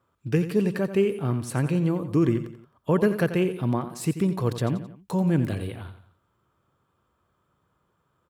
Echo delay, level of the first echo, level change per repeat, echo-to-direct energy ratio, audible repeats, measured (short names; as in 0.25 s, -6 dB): 88 ms, -11.5 dB, -7.0 dB, -10.5 dB, 3